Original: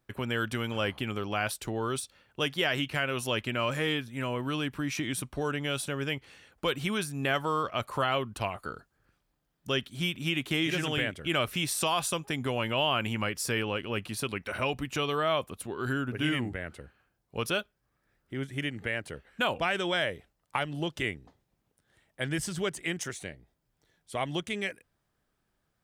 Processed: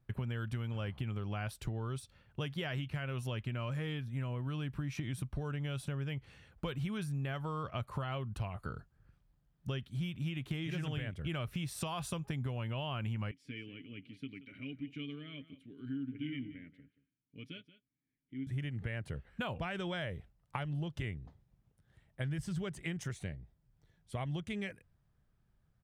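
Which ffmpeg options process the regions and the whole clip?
ffmpeg -i in.wav -filter_complex "[0:a]asettb=1/sr,asplit=3[link_01][link_02][link_03];[link_01]atrim=end=13.314[link_04];[link_02]atrim=start=13.31:end=18.47,asetpts=PTS-STARTPTS,afade=type=in:duration=0.004:curve=qsin,afade=type=out:start_time=5.156:duration=0.004:curve=qsin,asplit=3[link_05][link_06][link_07];[link_05]bandpass=frequency=270:width_type=q:width=8,volume=0dB[link_08];[link_06]bandpass=frequency=2290:width_type=q:width=8,volume=-6dB[link_09];[link_07]bandpass=frequency=3010:width_type=q:width=8,volume=-9dB[link_10];[link_08][link_09][link_10]amix=inputs=3:normalize=0,aecho=1:1:6.9:0.4,atrim=end_sample=227556,aecho=1:1:179:0.158,atrim=end_sample=227556[link_11];[link_03]atrim=start=18.466[link_12];[link_04][link_11]acrossfade=duration=0.004:curve1=hsin:curve2=qsin[link_13];[link_13][link_12]acrossfade=duration=0.004:curve1=qsin:curve2=hsin,firequalizer=gain_entry='entry(130,0);entry(280,-13);entry(6900,-19)':delay=0.05:min_phase=1,acompressor=threshold=-43dB:ratio=6,volume=8.5dB" out.wav

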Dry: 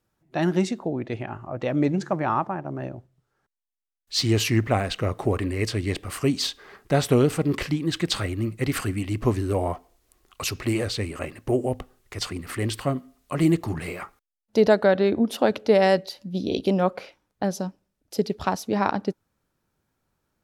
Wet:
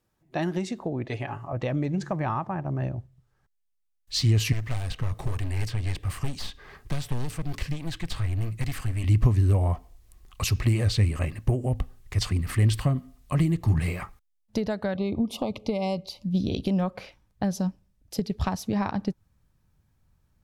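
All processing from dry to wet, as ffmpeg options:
ffmpeg -i in.wav -filter_complex "[0:a]asettb=1/sr,asplit=3[link_01][link_02][link_03];[link_01]atrim=end=1.084[link_04];[link_02]atrim=start=1.08:end=1.53,asetpts=PTS-STARTPTS,afade=type=in:duration=0.004:curve=qsin,afade=type=out:start_time=0.446:duration=0.004:curve=qsin,highpass=41,bass=frequency=250:gain=-7,treble=frequency=4000:gain=4,aecho=1:1:7.1:0.67,atrim=end_sample=19845[link_05];[link_03]atrim=start=1.526[link_06];[link_04][link_05]acrossfade=duration=0.004:curve1=hsin:curve2=qsin[link_07];[link_07][link_06]acrossfade=duration=0.004:curve1=qsin:curve2=hsin,asettb=1/sr,asplit=3[link_08][link_09][link_10];[link_08]atrim=end=4.524[link_11];[link_09]atrim=start=4.52:end=9.04,asetpts=PTS-STARTPTS,afade=type=in:duration=0.004:curve=qsin,afade=type=out:start_time=4.516:duration=0.004:curve=qsin,bandreject=frequency=200:width=5,aeval=exprs='clip(val(0),-1,0.0299)':channel_layout=same,acrossover=split=510|3200[link_12][link_13][link_14];[link_12]acompressor=threshold=-36dB:ratio=4[link_15];[link_13]acompressor=threshold=-40dB:ratio=4[link_16];[link_14]acompressor=threshold=-43dB:ratio=4[link_17];[link_15][link_16][link_17]amix=inputs=3:normalize=0[link_18];[link_10]atrim=start=9.036[link_19];[link_11][link_18]acrossfade=duration=0.004:curve1=hsin:curve2=qsin[link_20];[link_20][link_19]acrossfade=duration=0.004:curve1=qsin:curve2=hsin,asettb=1/sr,asplit=3[link_21][link_22][link_23];[link_21]atrim=end=14.964[link_24];[link_22]atrim=start=14.96:end=16.23,asetpts=PTS-STARTPTS,afade=type=in:duration=0.004:curve=qsin,afade=type=out:start_time=1.266:duration=0.004:curve=qsin,asuperstop=centerf=1600:order=20:qfactor=2,highshelf=frequency=8500:gain=-5[link_25];[link_23]atrim=start=16.226[link_26];[link_24][link_25]acrossfade=duration=0.004:curve1=hsin:curve2=qsin[link_27];[link_27][link_26]acrossfade=duration=0.004:curve1=qsin:curve2=hsin,bandreject=frequency=1400:width=12,acompressor=threshold=-24dB:ratio=6,asubboost=boost=6:cutoff=140" out.wav

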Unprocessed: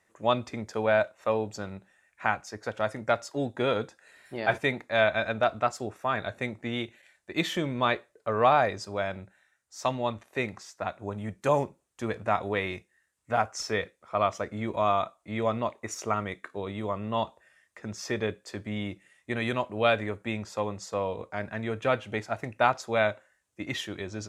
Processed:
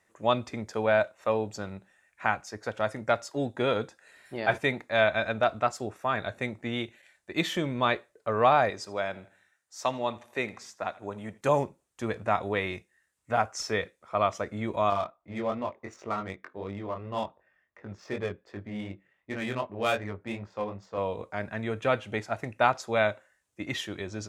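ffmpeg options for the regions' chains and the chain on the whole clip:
ffmpeg -i in.wav -filter_complex "[0:a]asettb=1/sr,asplit=3[link_01][link_02][link_03];[link_01]atrim=end=8.704[link_04];[link_02]atrim=start=8.7:end=11.41,asetpts=PTS-STARTPTS,afade=type=in:duration=0.004:curve=qsin,afade=type=out:start_time=2.706:duration=0.004:curve=qsin,highpass=frequency=240:poles=1,aecho=1:1:81|162|243:0.0891|0.0383|0.0165,atrim=end_sample=119511[link_05];[link_03]atrim=start=11.406[link_06];[link_04][link_05]acrossfade=duration=0.004:curve1=hsin:curve2=qsin[link_07];[link_07][link_06]acrossfade=duration=0.004:curve1=qsin:curve2=hsin,asettb=1/sr,asplit=3[link_08][link_09][link_10];[link_08]atrim=end=14.904[link_11];[link_09]atrim=start=14.9:end=20.98,asetpts=PTS-STARTPTS,afade=type=in:duration=0.004:curve=qsin,afade=type=out:start_time=6.076:duration=0.004:curve=qsin,flanger=delay=20:depth=3.3:speed=2.7,adynamicsmooth=sensitivity=7:basefreq=2000[link_12];[link_10]atrim=start=20.976[link_13];[link_11][link_12]acrossfade=duration=0.004:curve1=hsin:curve2=qsin[link_14];[link_14][link_13]acrossfade=duration=0.004:curve1=qsin:curve2=hsin" out.wav

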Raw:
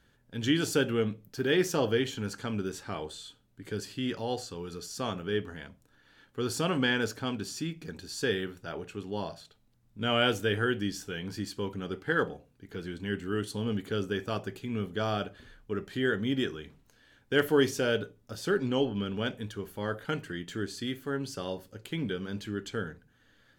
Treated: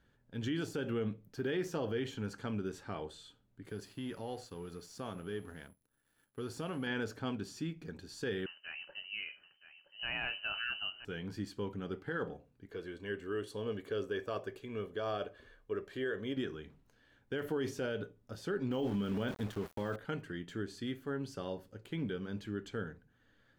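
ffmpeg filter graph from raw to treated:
ffmpeg -i in.wav -filter_complex "[0:a]asettb=1/sr,asplit=3[link_01][link_02][link_03];[link_01]atrim=end=3.664[link_04];[link_02]atrim=start=3.66:end=6.87,asetpts=PTS-STARTPTS,afade=type=in:duration=0.004:curve=qsin,afade=type=out:start_time=3.206:duration=0.004:curve=qsin,acompressor=threshold=-34dB:ratio=2:attack=3.2:release=140:knee=1:detection=peak,aeval=exprs='val(0)+0.002*sin(2*PI*11000*n/s)':channel_layout=same,aeval=exprs='sgn(val(0))*max(abs(val(0))-0.002,0)':channel_layout=same[link_05];[link_03]atrim=start=6.866[link_06];[link_04][link_05]acrossfade=duration=0.004:curve1=hsin:curve2=qsin[link_07];[link_07][link_06]acrossfade=duration=0.004:curve1=qsin:curve2=hsin,asettb=1/sr,asplit=3[link_08][link_09][link_10];[link_08]atrim=end=8.464[link_11];[link_09]atrim=start=8.46:end=11.05,asetpts=PTS-STARTPTS,afade=type=in:duration=0.004:curve=qsin,afade=type=out:start_time=2.586:duration=0.004:curve=qsin,lowpass=frequency=2600:width_type=q:width=0.5098,lowpass=frequency=2600:width_type=q:width=0.6013,lowpass=frequency=2600:width_type=q:width=0.9,lowpass=frequency=2600:width_type=q:width=2.563,afreqshift=-3100,aecho=1:1:970:0.211,atrim=end_sample=114219[link_12];[link_10]atrim=start=11.046[link_13];[link_11][link_12]acrossfade=duration=0.004:curve1=hsin:curve2=qsin[link_14];[link_14][link_13]acrossfade=duration=0.004:curve1=qsin:curve2=hsin,asettb=1/sr,asplit=3[link_15][link_16][link_17];[link_15]atrim=end=12.684[link_18];[link_16]atrim=start=12.68:end=16.37,asetpts=PTS-STARTPTS,afade=type=in:duration=0.004:curve=qsin,afade=type=out:start_time=3.686:duration=0.004:curve=qsin,lowshelf=frequency=240:width_type=q:width=1.5:gain=-7,aecho=1:1:1.8:0.39,atrim=end_sample=162729[link_19];[link_17]atrim=start=16.366[link_20];[link_18][link_19]acrossfade=duration=0.004:curve1=hsin:curve2=qsin[link_21];[link_21][link_20]acrossfade=duration=0.004:curve1=qsin:curve2=hsin,asettb=1/sr,asplit=3[link_22][link_23][link_24];[link_22]atrim=end=18.714[link_25];[link_23]atrim=start=18.71:end=19.96,asetpts=PTS-STARTPTS,afade=type=in:duration=0.004:curve=qsin,afade=type=out:start_time=1.246:duration=0.004:curve=qsin,asplit=2[link_26][link_27];[link_27]adelay=25,volume=-13dB[link_28];[link_26][link_28]amix=inputs=2:normalize=0,atrim=end_sample=55125,aeval=exprs='val(0)*gte(abs(val(0)),0.0075)':channel_layout=same,acontrast=73[link_29];[link_24]atrim=start=19.956[link_30];[link_25][link_29]acrossfade=duration=0.004:curve1=hsin:curve2=qsin[link_31];[link_31][link_30]acrossfade=duration=0.004:curve1=qsin:curve2=hsin,deesser=0.75,highshelf=frequency=2900:gain=-8.5,alimiter=limit=-23dB:level=0:latency=1:release=51,volume=-4dB" out.wav

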